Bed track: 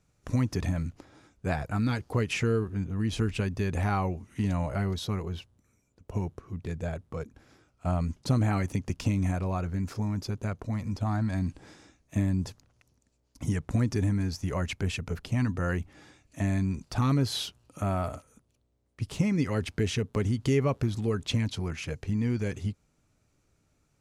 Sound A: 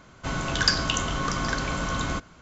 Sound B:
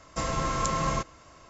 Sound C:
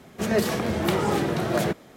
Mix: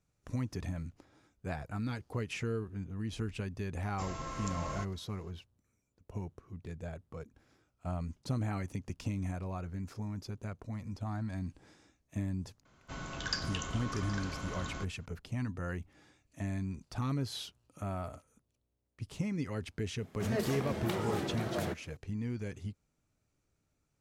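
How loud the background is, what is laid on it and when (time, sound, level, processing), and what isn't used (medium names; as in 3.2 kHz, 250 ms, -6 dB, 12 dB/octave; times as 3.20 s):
bed track -9 dB
3.82 s: add B -12.5 dB
12.65 s: add A -13.5 dB
20.01 s: add C -11.5 dB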